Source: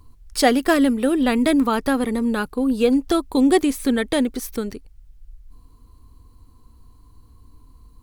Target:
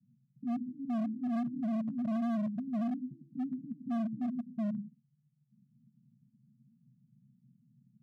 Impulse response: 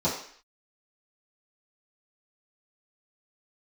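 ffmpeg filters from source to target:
-filter_complex "[0:a]asuperpass=centerf=170:order=12:qfactor=1.6,asplit=2[link_01][link_02];[1:a]atrim=start_sample=2205,atrim=end_sample=6615,adelay=94[link_03];[link_02][link_03]afir=irnorm=-1:irlink=0,volume=-25.5dB[link_04];[link_01][link_04]amix=inputs=2:normalize=0,asoftclip=type=hard:threshold=-30.5dB"

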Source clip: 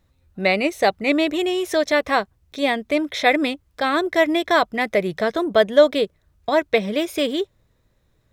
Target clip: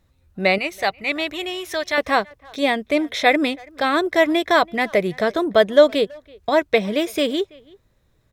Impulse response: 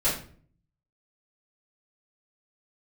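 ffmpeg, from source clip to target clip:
-filter_complex "[0:a]asettb=1/sr,asplit=3[link_01][link_02][link_03];[link_01]atrim=end=0.584[link_04];[link_02]atrim=start=0.58:end=1.98,asetpts=PTS-STARTPTS,afade=type=in:duration=0.004:curve=qsin,afade=type=out:start_time=1.396:duration=0.004:curve=qsin,equalizer=frequency=250:width_type=o:width=1:gain=-11,equalizer=frequency=500:width_type=o:width=1:gain=-8,equalizer=frequency=8000:width_type=o:width=1:gain=-5[link_05];[link_03]atrim=start=1.976[link_06];[link_04][link_05]acrossfade=duration=0.004:curve1=hsin:curve2=qsin[link_07];[link_07][link_06]acrossfade=duration=0.004:curve1=qsin:curve2=hsin,asplit=2[link_08][link_09];[link_09]adelay=330,highpass=300,lowpass=3400,asoftclip=type=hard:threshold=-11.5dB,volume=-24dB[link_10];[link_08][link_10]amix=inputs=2:normalize=0,volume=1.5dB" -ar 48000 -c:a libmp3lame -b:a 112k

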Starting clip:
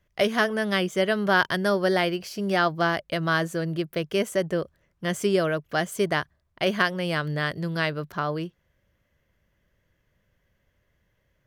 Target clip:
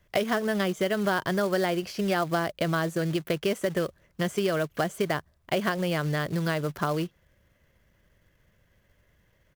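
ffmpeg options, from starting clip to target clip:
ffmpeg -i in.wav -filter_complex "[0:a]acrossover=split=1100|4000[link_01][link_02][link_03];[link_01]acompressor=threshold=-30dB:ratio=4[link_04];[link_02]acompressor=threshold=-40dB:ratio=4[link_05];[link_03]acompressor=threshold=-51dB:ratio=4[link_06];[link_04][link_05][link_06]amix=inputs=3:normalize=0,acrusher=bits=4:mode=log:mix=0:aa=0.000001,atempo=1.2,volume=5dB" out.wav

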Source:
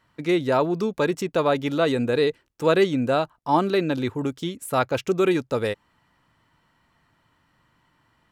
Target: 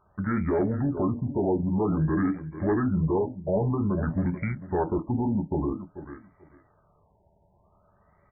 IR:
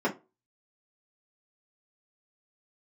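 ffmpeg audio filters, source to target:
-filter_complex "[0:a]equalizer=frequency=310:width_type=o:width=0.51:gain=-4.5,aecho=1:1:441|882:0.126|0.0227,asplit=2[link_01][link_02];[1:a]atrim=start_sample=2205,asetrate=57330,aresample=44100[link_03];[link_02][link_03]afir=irnorm=-1:irlink=0,volume=-15dB[link_04];[link_01][link_04]amix=inputs=2:normalize=0,tremolo=f=130:d=0.333,aresample=8000,aresample=44100,asplit=2[link_05][link_06];[link_06]aeval=exprs='0.398*sin(PI/2*2*val(0)/0.398)':channel_layout=same,volume=-3.5dB[link_07];[link_05][link_07]amix=inputs=2:normalize=0,asetrate=28595,aresample=44100,atempo=1.54221,alimiter=limit=-13dB:level=0:latency=1:release=50,afftfilt=real='re*lt(b*sr/1024,950*pow(2400/950,0.5+0.5*sin(2*PI*0.51*pts/sr)))':imag='im*lt(b*sr/1024,950*pow(2400/950,0.5+0.5*sin(2*PI*0.51*pts/sr)))':win_size=1024:overlap=0.75,volume=-5.5dB"

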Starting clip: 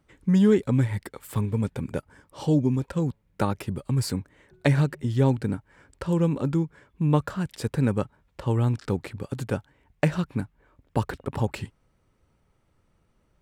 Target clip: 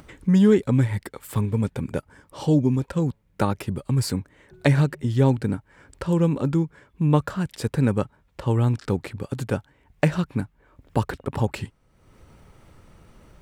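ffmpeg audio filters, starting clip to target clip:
ffmpeg -i in.wav -af "acompressor=mode=upward:threshold=-39dB:ratio=2.5,volume=2.5dB" out.wav

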